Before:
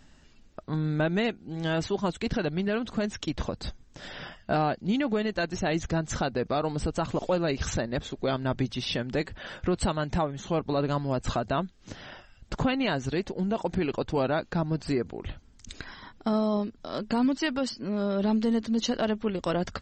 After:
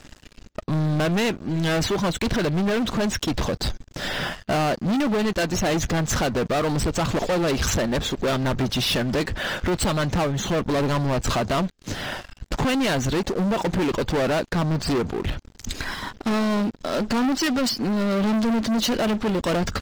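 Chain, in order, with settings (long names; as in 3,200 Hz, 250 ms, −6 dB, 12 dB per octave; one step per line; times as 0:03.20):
leveller curve on the samples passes 5
level −3.5 dB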